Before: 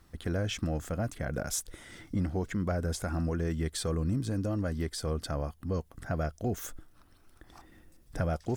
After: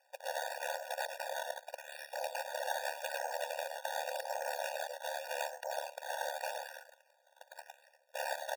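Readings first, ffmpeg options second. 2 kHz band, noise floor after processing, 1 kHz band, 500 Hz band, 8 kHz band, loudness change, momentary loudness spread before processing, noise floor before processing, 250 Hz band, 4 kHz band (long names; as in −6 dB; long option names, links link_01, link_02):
+3.5 dB, −71 dBFS, +4.0 dB, −3.5 dB, −6.0 dB, −6.0 dB, 5 LU, −61 dBFS, below −40 dB, −1.5 dB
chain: -af "lowpass=2500,bandreject=frequency=51.2:width_type=h:width=4,bandreject=frequency=102.4:width_type=h:width=4,bandreject=frequency=153.6:width_type=h:width=4,acompressor=threshold=-39dB:ratio=4,aecho=1:1:105|210|315:0.631|0.139|0.0305,acrusher=samples=12:mix=1:aa=0.000001:lfo=1:lforange=12:lforate=0.85,aeval=exprs='val(0)*sin(2*PI*36*n/s)':channel_layout=same,aeval=exprs='abs(val(0))':channel_layout=same,aeval=exprs='0.0299*(cos(1*acos(clip(val(0)/0.0299,-1,1)))-cos(1*PI/2))+0.0119*(cos(8*acos(clip(val(0)/0.0299,-1,1)))-cos(8*PI/2))':channel_layout=same,afftfilt=real='re*eq(mod(floor(b*sr/1024/480),2),1)':imag='im*eq(mod(floor(b*sr/1024/480),2),1)':win_size=1024:overlap=0.75,volume=11dB"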